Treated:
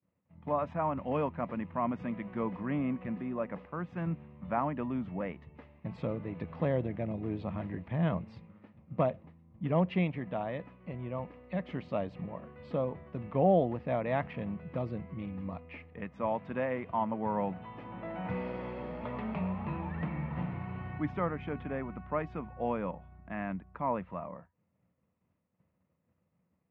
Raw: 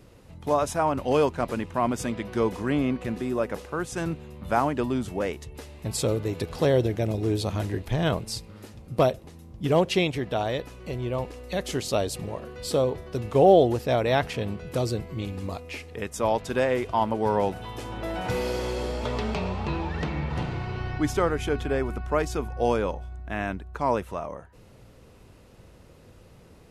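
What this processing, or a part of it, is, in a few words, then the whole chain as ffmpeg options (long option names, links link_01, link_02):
bass cabinet: -af "agate=range=-33dB:threshold=-39dB:ratio=3:detection=peak,highpass=frequency=87:width=0.5412,highpass=frequency=87:width=1.3066,equalizer=frequency=88:width_type=q:width=4:gain=8,equalizer=frequency=180:width_type=q:width=4:gain=7,equalizer=frequency=790:width_type=q:width=4:gain=-4,equalizer=frequency=1500:width_type=q:width=4:gain=-8,lowpass=frequency=2100:width=0.5412,lowpass=frequency=2100:width=1.3066,equalizer=frequency=100:width_type=o:width=0.67:gain=-11,equalizer=frequency=400:width_type=o:width=0.67:gain=-11,equalizer=frequency=10000:width_type=o:width=0.67:gain=5,volume=-4dB"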